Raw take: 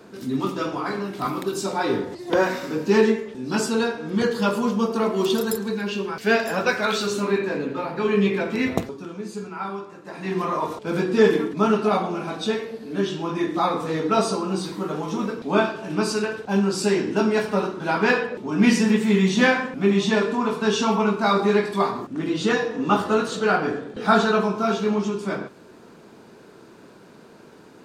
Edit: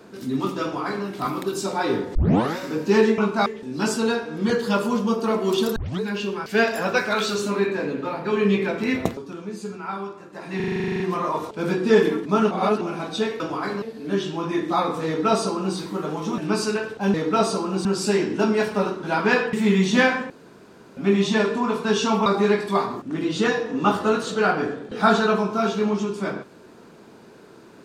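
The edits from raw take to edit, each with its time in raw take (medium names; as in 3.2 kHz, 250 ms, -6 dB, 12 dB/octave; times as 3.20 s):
0.63–1.05 s: copy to 12.68 s
2.15 s: tape start 0.42 s
5.48 s: tape start 0.25 s
10.28 s: stutter 0.04 s, 12 plays
11.79–12.09 s: reverse
13.92–14.63 s: copy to 16.62 s
15.24–15.86 s: delete
18.30–18.97 s: delete
19.74 s: insert room tone 0.67 s
21.03–21.31 s: move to 3.18 s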